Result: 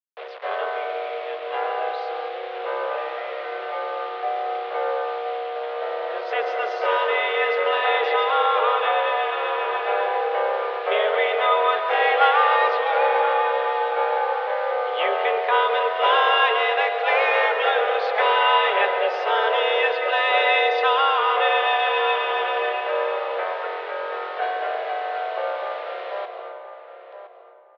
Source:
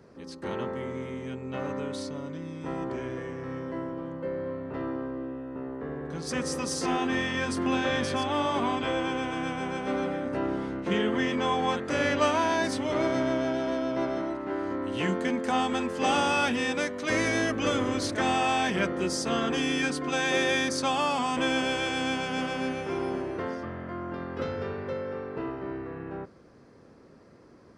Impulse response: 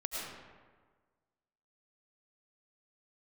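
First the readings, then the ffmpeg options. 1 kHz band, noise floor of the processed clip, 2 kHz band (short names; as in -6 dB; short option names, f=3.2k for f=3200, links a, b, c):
+11.0 dB, -38 dBFS, +8.5 dB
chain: -filter_complex "[0:a]equalizer=f=1.1k:t=o:w=0.77:g=2,acontrast=63,acrusher=bits=5:mix=0:aa=0.000001,asplit=2[a][b];[b]adelay=1015,lowpass=f=1.4k:p=1,volume=-10dB,asplit=2[c][d];[d]adelay=1015,lowpass=f=1.4k:p=1,volume=0.22,asplit=2[e][f];[f]adelay=1015,lowpass=f=1.4k:p=1,volume=0.22[g];[a][c][e][g]amix=inputs=4:normalize=0,asplit=2[h][i];[1:a]atrim=start_sample=2205,asetrate=61740,aresample=44100,adelay=136[j];[i][j]afir=irnorm=-1:irlink=0,volume=-7.5dB[k];[h][k]amix=inputs=2:normalize=0,highpass=f=230:t=q:w=0.5412,highpass=f=230:t=q:w=1.307,lowpass=f=3.4k:t=q:w=0.5176,lowpass=f=3.4k:t=q:w=0.7071,lowpass=f=3.4k:t=q:w=1.932,afreqshift=210"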